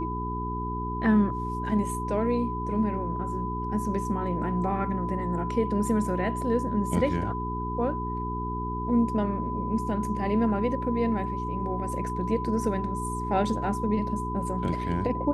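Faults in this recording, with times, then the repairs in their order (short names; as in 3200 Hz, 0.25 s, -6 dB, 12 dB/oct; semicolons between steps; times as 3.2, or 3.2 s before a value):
hum 60 Hz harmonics 7 -33 dBFS
tone 1000 Hz -32 dBFS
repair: de-hum 60 Hz, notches 7; notch 1000 Hz, Q 30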